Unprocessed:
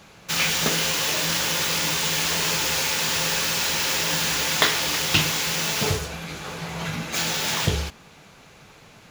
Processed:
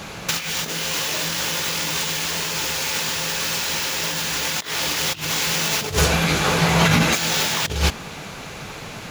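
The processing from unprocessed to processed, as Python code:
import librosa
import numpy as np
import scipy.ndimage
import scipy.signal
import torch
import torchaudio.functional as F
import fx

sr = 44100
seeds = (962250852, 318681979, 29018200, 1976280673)

y = fx.over_compress(x, sr, threshold_db=-29.0, ratio=-0.5)
y = y * librosa.db_to_amplitude(8.5)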